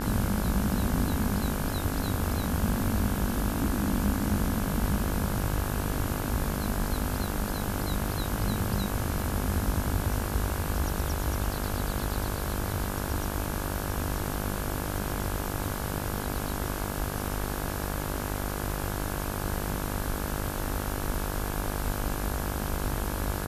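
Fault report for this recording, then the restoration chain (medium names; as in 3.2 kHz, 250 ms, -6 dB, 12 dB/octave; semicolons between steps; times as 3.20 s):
buzz 50 Hz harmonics 34 -34 dBFS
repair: de-hum 50 Hz, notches 34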